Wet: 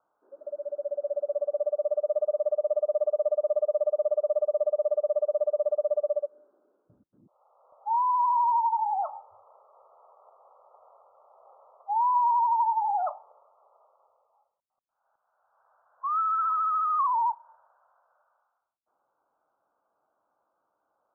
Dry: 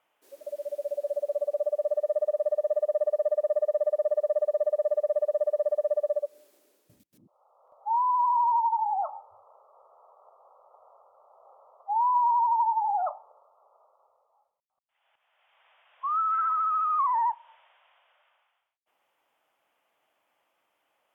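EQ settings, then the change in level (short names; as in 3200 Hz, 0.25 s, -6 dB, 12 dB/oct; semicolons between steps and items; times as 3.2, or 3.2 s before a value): steep low-pass 1500 Hz 96 dB/oct; 0.0 dB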